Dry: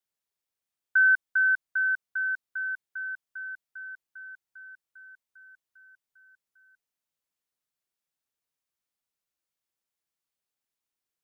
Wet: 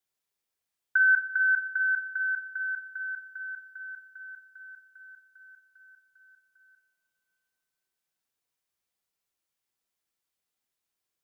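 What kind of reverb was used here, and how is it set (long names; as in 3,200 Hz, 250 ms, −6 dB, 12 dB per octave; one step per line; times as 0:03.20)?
coupled-rooms reverb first 0.47 s, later 3 s, from −19 dB, DRR 4.5 dB
level +1.5 dB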